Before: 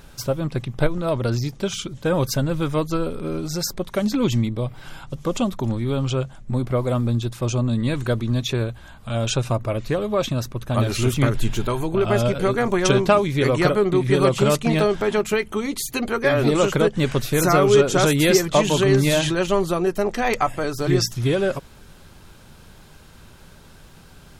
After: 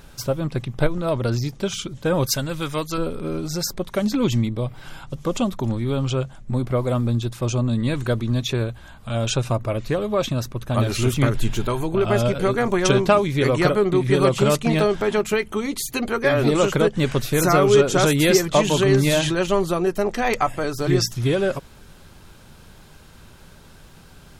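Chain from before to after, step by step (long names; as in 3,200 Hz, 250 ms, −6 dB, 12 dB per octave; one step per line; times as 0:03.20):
0:02.26–0:02.98: tilt shelving filter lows −5.5 dB, about 1,200 Hz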